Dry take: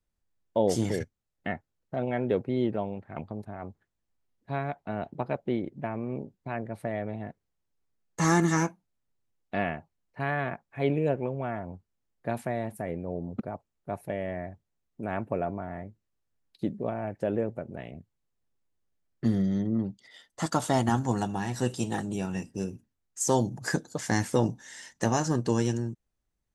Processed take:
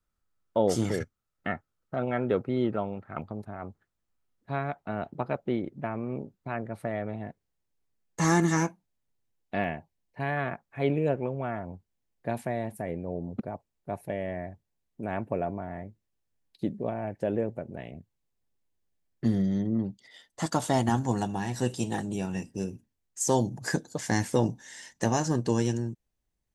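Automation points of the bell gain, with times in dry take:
bell 1300 Hz 0.3 oct
+13 dB
from 3.22 s +6 dB
from 7.2 s -3 dB
from 9.64 s -10 dB
from 10.37 s +2 dB
from 11.66 s -5 dB

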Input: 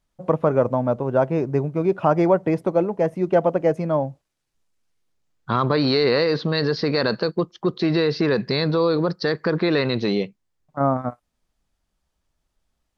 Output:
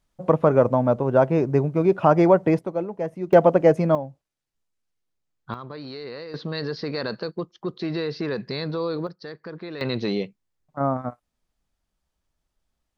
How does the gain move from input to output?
+1.5 dB
from 2.59 s -7 dB
from 3.33 s +3.5 dB
from 3.95 s -8 dB
from 5.54 s -17.5 dB
from 6.34 s -7.5 dB
from 9.07 s -15.5 dB
from 9.81 s -3.5 dB

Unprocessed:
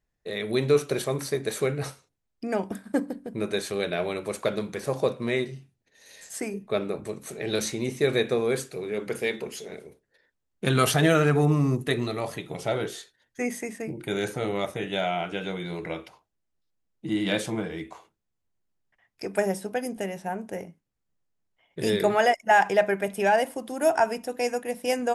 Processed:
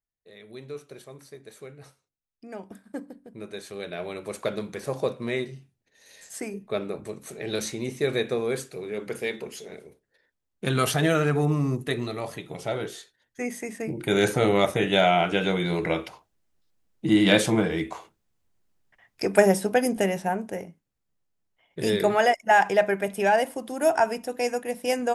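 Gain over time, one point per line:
1.77 s -17 dB
2.78 s -10 dB
3.54 s -10 dB
4.42 s -2 dB
13.54 s -2 dB
14.24 s +7.5 dB
20.13 s +7.5 dB
20.61 s +0.5 dB

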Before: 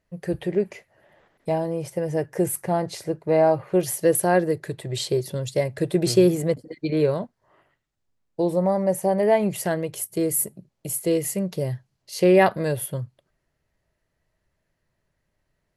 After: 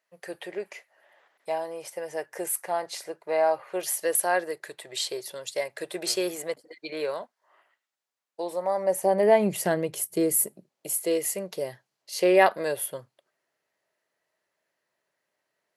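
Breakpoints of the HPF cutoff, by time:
8.64 s 750 Hz
9.37 s 180 Hz
10.02 s 180 Hz
10.98 s 450 Hz

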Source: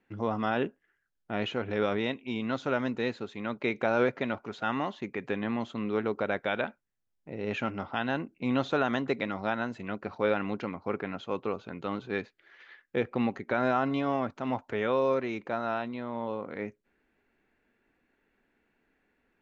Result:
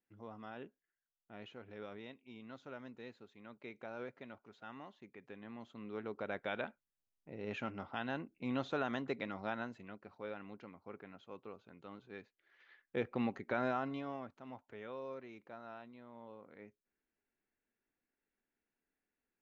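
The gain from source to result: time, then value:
5.36 s -20 dB
6.45 s -9.5 dB
9.61 s -9.5 dB
10.05 s -18 dB
12.19 s -18 dB
13.03 s -7.5 dB
13.58 s -7.5 dB
14.46 s -19 dB

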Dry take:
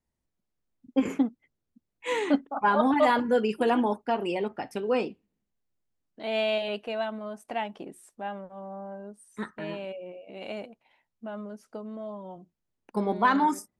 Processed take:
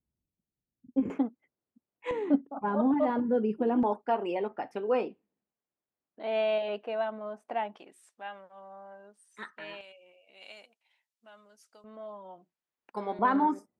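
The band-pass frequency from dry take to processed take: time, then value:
band-pass, Q 0.59
130 Hz
from 1.1 s 670 Hz
from 2.11 s 200 Hz
from 3.83 s 750 Hz
from 7.76 s 2600 Hz
from 9.81 s 6800 Hz
from 11.84 s 1600 Hz
from 13.19 s 450 Hz

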